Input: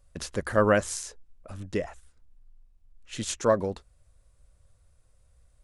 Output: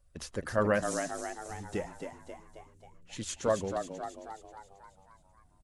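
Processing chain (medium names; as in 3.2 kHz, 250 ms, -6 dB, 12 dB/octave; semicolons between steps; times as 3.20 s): coarse spectral quantiser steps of 15 dB; frequency-shifting echo 269 ms, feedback 55%, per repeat +76 Hz, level -7 dB; trim -5.5 dB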